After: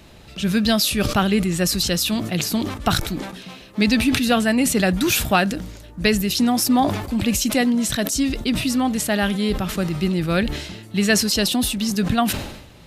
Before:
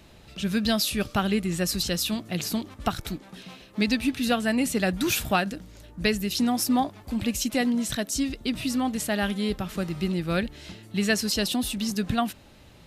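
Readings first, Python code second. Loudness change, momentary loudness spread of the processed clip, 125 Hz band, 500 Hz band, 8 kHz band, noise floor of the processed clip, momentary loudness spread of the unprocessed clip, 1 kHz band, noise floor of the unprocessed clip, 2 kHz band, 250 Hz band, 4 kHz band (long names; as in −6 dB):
+6.5 dB, 9 LU, +7.5 dB, +6.0 dB, +7.5 dB, −43 dBFS, 9 LU, +6.0 dB, −51 dBFS, +6.5 dB, +6.5 dB, +6.5 dB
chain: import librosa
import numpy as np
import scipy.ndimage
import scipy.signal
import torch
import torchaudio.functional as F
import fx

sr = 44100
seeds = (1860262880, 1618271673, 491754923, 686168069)

y = fx.sustainer(x, sr, db_per_s=62.0)
y = F.gain(torch.from_numpy(y), 5.5).numpy()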